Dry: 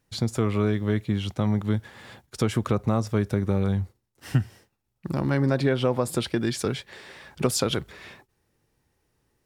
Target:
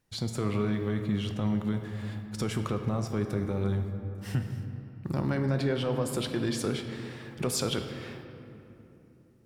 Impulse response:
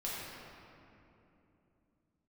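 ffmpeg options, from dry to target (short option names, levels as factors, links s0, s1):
-filter_complex "[0:a]alimiter=limit=0.158:level=0:latency=1:release=28,asplit=2[s0][s1];[1:a]atrim=start_sample=2205[s2];[s1][s2]afir=irnorm=-1:irlink=0,volume=0.501[s3];[s0][s3]amix=inputs=2:normalize=0,volume=0.501"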